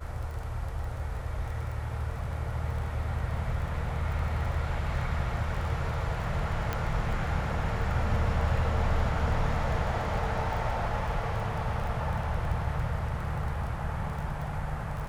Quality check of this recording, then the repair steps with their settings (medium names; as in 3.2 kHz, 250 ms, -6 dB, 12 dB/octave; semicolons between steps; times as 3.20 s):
crackle 21 per s -36 dBFS
6.73 s: pop -16 dBFS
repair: de-click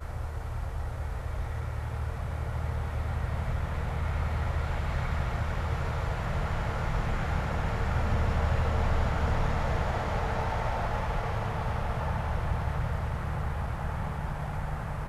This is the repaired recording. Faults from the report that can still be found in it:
nothing left